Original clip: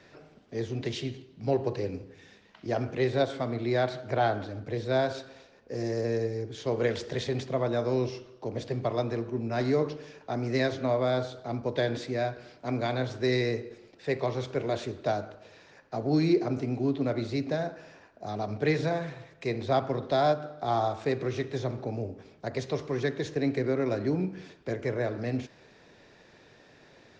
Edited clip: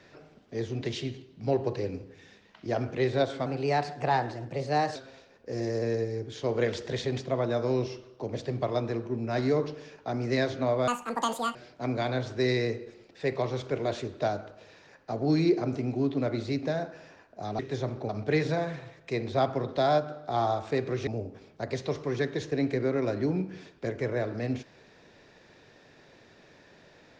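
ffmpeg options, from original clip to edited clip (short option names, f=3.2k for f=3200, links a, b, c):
-filter_complex "[0:a]asplit=8[a][b][c][d][e][f][g][h];[a]atrim=end=3.464[i];[b]atrim=start=3.46:end=5.18,asetpts=PTS-STARTPTS,asetrate=50715,aresample=44100,atrim=end_sample=65958,asetpts=PTS-STARTPTS[j];[c]atrim=start=5.176:end=11.104[k];[d]atrim=start=11.1:end=12.39,asetpts=PTS-STARTPTS,asetrate=84231,aresample=44100[l];[e]atrim=start=12.386:end=18.432[m];[f]atrim=start=21.408:end=21.912[n];[g]atrim=start=18.428:end=21.412[o];[h]atrim=start=21.908[p];[i][j]acrossfade=d=0.004:c1=hsin:c2=hsin[q];[q][k]acrossfade=d=0.004:c1=hsin:c2=hsin[r];[r][l]acrossfade=d=0.004:c1=hsin:c2=hsin[s];[s][m]acrossfade=d=0.004:c1=hsin:c2=hsin[t];[t][n]acrossfade=d=0.004:c1=hsin:c2=hsin[u];[u][o]acrossfade=d=0.004:c1=hsin:c2=hsin[v];[v][p]acrossfade=d=0.004:c1=hsin:c2=hsin"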